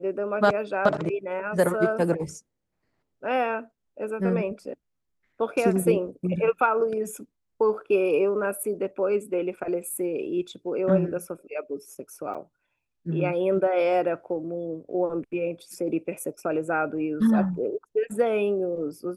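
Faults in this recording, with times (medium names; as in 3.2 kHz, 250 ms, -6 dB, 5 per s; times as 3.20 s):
12.34–12.35 s: dropout 6.7 ms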